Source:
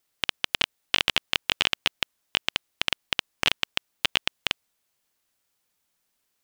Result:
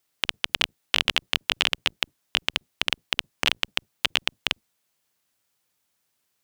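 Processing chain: octaver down 1 oct, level +2 dB; HPF 140 Hz 6 dB/oct; gain +1 dB

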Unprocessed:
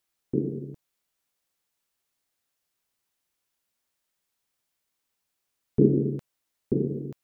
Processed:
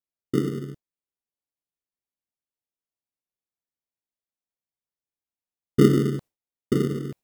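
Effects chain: gate with hold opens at -28 dBFS; in parallel at -5.5 dB: sample-and-hold 27×

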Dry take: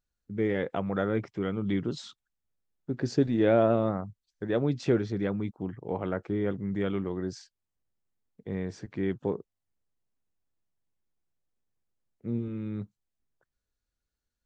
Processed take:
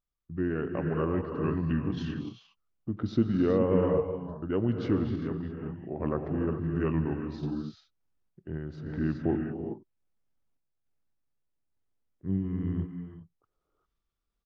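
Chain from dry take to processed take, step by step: high shelf 4800 Hz -10.5 dB; non-linear reverb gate 0.43 s rising, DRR 3 dB; random-step tremolo 3.5 Hz; pitch shift -3.5 st; vocal rider within 3 dB 2 s

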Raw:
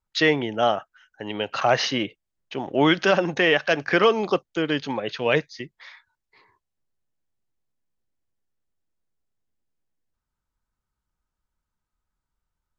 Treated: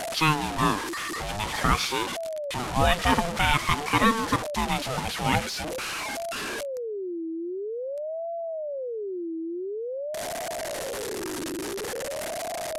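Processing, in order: delta modulation 64 kbps, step -23 dBFS; ring modulator with a swept carrier 500 Hz, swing 35%, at 0.48 Hz

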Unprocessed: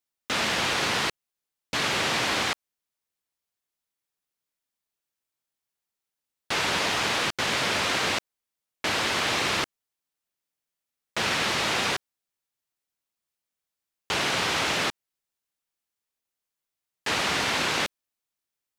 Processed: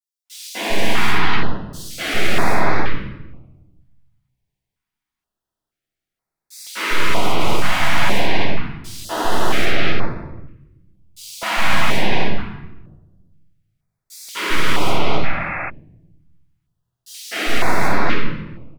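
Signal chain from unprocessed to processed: tracing distortion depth 0.12 ms; high shelf 4300 Hz -10.5 dB; notches 50/100/150 Hz; three bands offset in time highs, mids, lows 0.25/0.4 s, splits 250/4700 Hz; shoebox room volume 450 m³, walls mixed, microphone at 7.1 m; spectral repair 15.27–15.67, 280–2700 Hz before; stepped notch 2.1 Hz 420–3000 Hz; gain -4.5 dB

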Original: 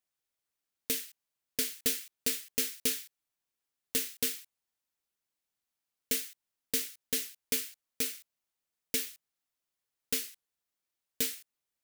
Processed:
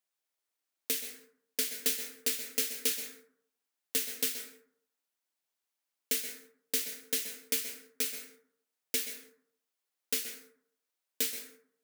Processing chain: HPF 280 Hz 12 dB/oct; plate-style reverb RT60 0.64 s, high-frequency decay 0.35×, pre-delay 0.115 s, DRR 6.5 dB

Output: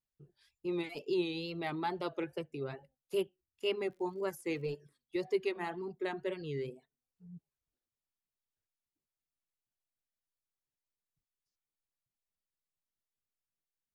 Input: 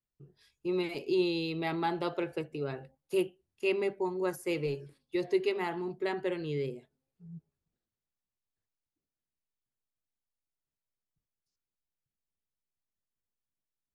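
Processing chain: reverb removal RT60 0.51 s; wow and flutter 91 cents; 3.8–4.65 crackle 110/s -53 dBFS; gain -3.5 dB

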